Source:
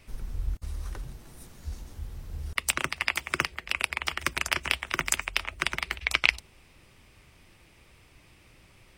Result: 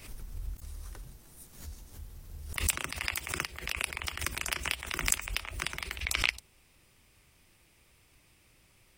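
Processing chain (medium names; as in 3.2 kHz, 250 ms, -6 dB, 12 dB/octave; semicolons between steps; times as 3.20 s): treble shelf 6.2 kHz +11.5 dB; swell ahead of each attack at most 98 dB/s; trim -8.5 dB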